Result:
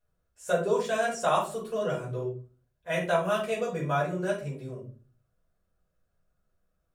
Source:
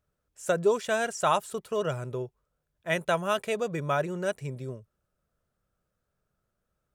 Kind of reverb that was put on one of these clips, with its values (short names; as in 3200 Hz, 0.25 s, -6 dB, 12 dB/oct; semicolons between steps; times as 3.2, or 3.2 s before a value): shoebox room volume 230 m³, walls furnished, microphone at 5.2 m; gain -10 dB